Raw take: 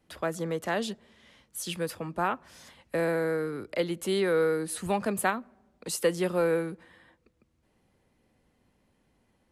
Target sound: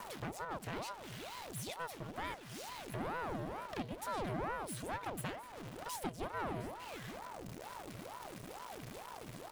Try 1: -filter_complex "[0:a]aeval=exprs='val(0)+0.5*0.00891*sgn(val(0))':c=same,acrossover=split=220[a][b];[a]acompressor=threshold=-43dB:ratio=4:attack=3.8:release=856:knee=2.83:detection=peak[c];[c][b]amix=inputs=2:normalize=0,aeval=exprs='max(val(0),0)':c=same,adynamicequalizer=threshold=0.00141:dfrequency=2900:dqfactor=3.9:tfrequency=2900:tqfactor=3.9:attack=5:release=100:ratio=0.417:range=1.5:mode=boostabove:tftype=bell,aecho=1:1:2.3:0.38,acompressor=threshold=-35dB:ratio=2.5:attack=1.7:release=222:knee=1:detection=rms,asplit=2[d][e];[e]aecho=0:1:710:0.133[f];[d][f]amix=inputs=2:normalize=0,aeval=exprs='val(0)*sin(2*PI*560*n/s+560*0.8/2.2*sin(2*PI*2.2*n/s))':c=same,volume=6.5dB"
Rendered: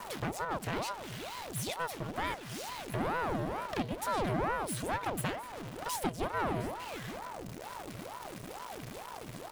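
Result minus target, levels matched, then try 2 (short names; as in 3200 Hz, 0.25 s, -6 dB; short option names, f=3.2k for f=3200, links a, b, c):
compressor: peak gain reduction -7 dB
-filter_complex "[0:a]aeval=exprs='val(0)+0.5*0.00891*sgn(val(0))':c=same,acrossover=split=220[a][b];[a]acompressor=threshold=-43dB:ratio=4:attack=3.8:release=856:knee=2.83:detection=peak[c];[c][b]amix=inputs=2:normalize=0,aeval=exprs='max(val(0),0)':c=same,adynamicequalizer=threshold=0.00141:dfrequency=2900:dqfactor=3.9:tfrequency=2900:tqfactor=3.9:attack=5:release=100:ratio=0.417:range=1.5:mode=boostabove:tftype=bell,aecho=1:1:2.3:0.38,acompressor=threshold=-46.5dB:ratio=2.5:attack=1.7:release=222:knee=1:detection=rms,asplit=2[d][e];[e]aecho=0:1:710:0.133[f];[d][f]amix=inputs=2:normalize=0,aeval=exprs='val(0)*sin(2*PI*560*n/s+560*0.8/2.2*sin(2*PI*2.2*n/s))':c=same,volume=6.5dB"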